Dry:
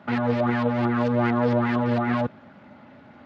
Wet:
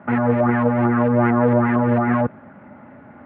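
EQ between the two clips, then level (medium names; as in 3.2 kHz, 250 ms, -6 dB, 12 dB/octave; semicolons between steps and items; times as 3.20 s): low-pass 2.1 kHz 24 dB/octave; distance through air 60 m; +5.5 dB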